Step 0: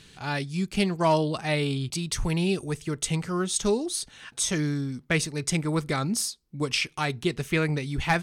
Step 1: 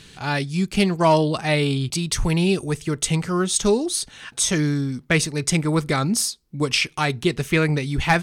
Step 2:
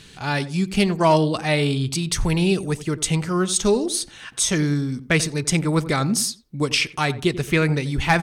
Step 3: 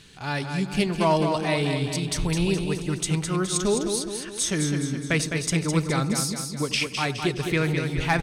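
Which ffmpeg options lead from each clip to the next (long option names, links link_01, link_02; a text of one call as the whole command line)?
ffmpeg -i in.wav -af "acontrast=50" out.wav
ffmpeg -i in.wav -filter_complex "[0:a]asplit=2[link_01][link_02];[link_02]adelay=89,lowpass=frequency=1000:poles=1,volume=-13.5dB,asplit=2[link_03][link_04];[link_04]adelay=89,lowpass=frequency=1000:poles=1,volume=0.31,asplit=2[link_05][link_06];[link_06]adelay=89,lowpass=frequency=1000:poles=1,volume=0.31[link_07];[link_01][link_03][link_05][link_07]amix=inputs=4:normalize=0" out.wav
ffmpeg -i in.wav -af "aecho=1:1:209|418|627|836|1045|1254:0.501|0.256|0.13|0.0665|0.0339|0.0173,volume=-5dB" out.wav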